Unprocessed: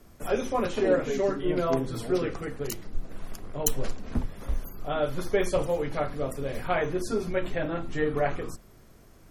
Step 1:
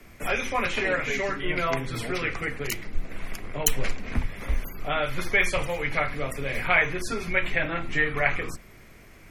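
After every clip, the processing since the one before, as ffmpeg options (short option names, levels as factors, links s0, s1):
-filter_complex "[0:a]equalizer=f=2200:w=1.9:g=14.5,acrossover=split=150|760|2000[s0][s1][s2][s3];[s1]acompressor=threshold=0.0158:ratio=6[s4];[s0][s4][s2][s3]amix=inputs=4:normalize=0,volume=1.41"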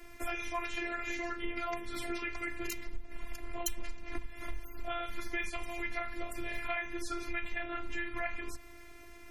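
-af "afftfilt=real='hypot(re,im)*cos(PI*b)':imag='0':win_size=512:overlap=0.75,acompressor=threshold=0.02:ratio=4,volume=1.12"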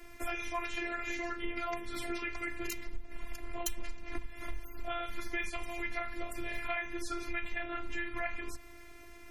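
-af "aeval=exprs='0.168*(abs(mod(val(0)/0.168+3,4)-2)-1)':c=same"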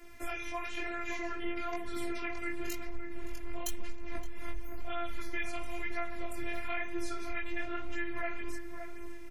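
-filter_complex "[0:a]flanger=delay=17.5:depth=5.7:speed=1,asplit=2[s0][s1];[s1]adelay=569,lowpass=f=1500:p=1,volume=0.447,asplit=2[s2][s3];[s3]adelay=569,lowpass=f=1500:p=1,volume=0.55,asplit=2[s4][s5];[s5]adelay=569,lowpass=f=1500:p=1,volume=0.55,asplit=2[s6][s7];[s7]adelay=569,lowpass=f=1500:p=1,volume=0.55,asplit=2[s8][s9];[s9]adelay=569,lowpass=f=1500:p=1,volume=0.55,asplit=2[s10][s11];[s11]adelay=569,lowpass=f=1500:p=1,volume=0.55,asplit=2[s12][s13];[s13]adelay=569,lowpass=f=1500:p=1,volume=0.55[s14];[s0][s2][s4][s6][s8][s10][s12][s14]amix=inputs=8:normalize=0,volume=1.19"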